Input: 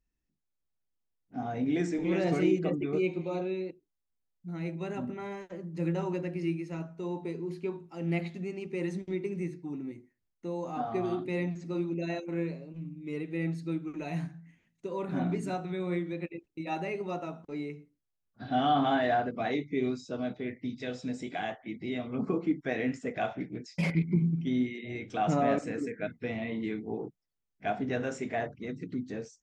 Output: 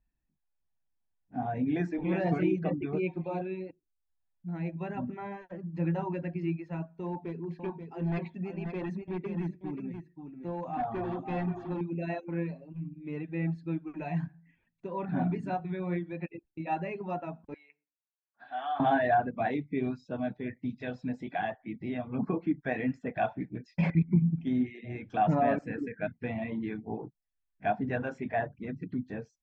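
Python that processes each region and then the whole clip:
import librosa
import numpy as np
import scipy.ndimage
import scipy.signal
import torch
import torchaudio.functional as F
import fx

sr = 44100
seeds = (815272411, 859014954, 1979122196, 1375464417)

y = fx.chain(x, sr, fx.clip_hard(threshold_db=-29.0),
    fx.echo_single(ms=532, db=-7.0), at=(7.06, 11.81))
y = fx.chain(y, sr, fx.highpass(hz=1200.0, slope=12),
    fx.high_shelf(hz=2100.0, db=-7.5), at=(17.54, 18.8))
y = scipy.signal.sosfilt(scipy.signal.butter(2, 2200.0, 'lowpass', fs=sr, output='sos'), y)
y = fx.dereverb_blind(y, sr, rt60_s=0.53)
y = y + 0.41 * np.pad(y, (int(1.2 * sr / 1000.0), 0))[:len(y)]
y = y * 10.0 ** (1.5 / 20.0)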